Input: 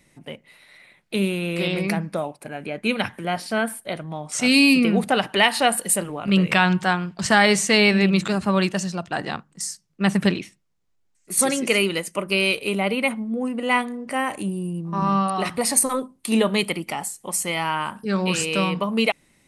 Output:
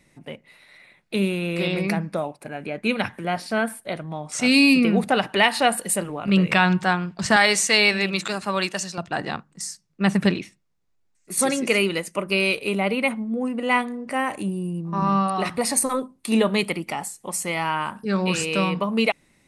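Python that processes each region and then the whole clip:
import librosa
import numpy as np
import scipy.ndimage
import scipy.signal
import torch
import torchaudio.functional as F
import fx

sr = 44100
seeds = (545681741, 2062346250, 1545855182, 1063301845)

y = fx.chain(x, sr, fx.highpass(hz=560.0, slope=6),
    fx.high_shelf(hz=3900.0, db=6.0), at=(7.36, 8.98))
y = fx.high_shelf(y, sr, hz=8200.0, db=-6.0)
y = fx.notch(y, sr, hz=3100.0, q=19.0)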